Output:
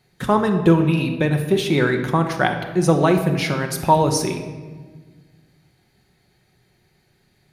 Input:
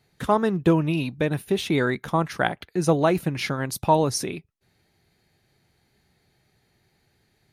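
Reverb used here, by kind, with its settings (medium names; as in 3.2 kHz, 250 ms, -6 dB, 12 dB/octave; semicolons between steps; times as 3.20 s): simulated room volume 1300 m³, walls mixed, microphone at 1 m; trim +3 dB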